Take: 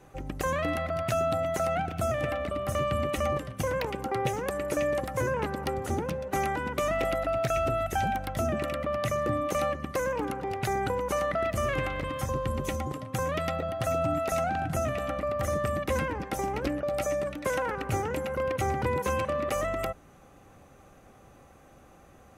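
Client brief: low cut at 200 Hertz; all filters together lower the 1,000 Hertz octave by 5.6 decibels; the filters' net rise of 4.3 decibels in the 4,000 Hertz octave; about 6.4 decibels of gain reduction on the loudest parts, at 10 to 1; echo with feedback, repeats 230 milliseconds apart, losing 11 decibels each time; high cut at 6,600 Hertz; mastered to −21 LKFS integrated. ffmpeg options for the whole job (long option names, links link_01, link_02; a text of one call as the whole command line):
ffmpeg -i in.wav -af "highpass=200,lowpass=6600,equalizer=frequency=1000:width_type=o:gain=-8.5,equalizer=frequency=4000:width_type=o:gain=7,acompressor=threshold=-34dB:ratio=10,aecho=1:1:230|460|690:0.282|0.0789|0.0221,volume=16.5dB" out.wav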